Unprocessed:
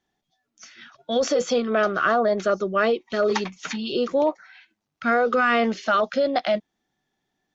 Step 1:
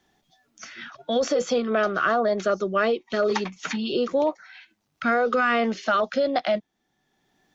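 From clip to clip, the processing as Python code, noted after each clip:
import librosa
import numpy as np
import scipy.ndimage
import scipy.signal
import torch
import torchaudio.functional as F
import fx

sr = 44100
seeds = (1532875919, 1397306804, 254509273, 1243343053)

y = fx.band_squash(x, sr, depth_pct=40)
y = F.gain(torch.from_numpy(y), -1.5).numpy()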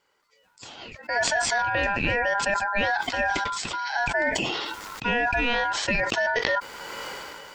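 y = x * np.sin(2.0 * np.pi * 1200.0 * np.arange(len(x)) / sr)
y = fx.sustainer(y, sr, db_per_s=22.0)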